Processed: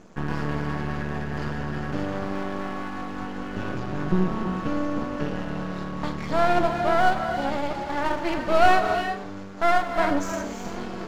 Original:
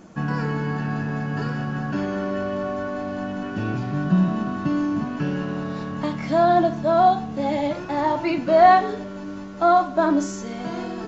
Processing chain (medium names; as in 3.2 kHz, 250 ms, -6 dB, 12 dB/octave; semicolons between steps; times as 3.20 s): half-wave rectifier; gated-style reverb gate 380 ms rising, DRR 6 dB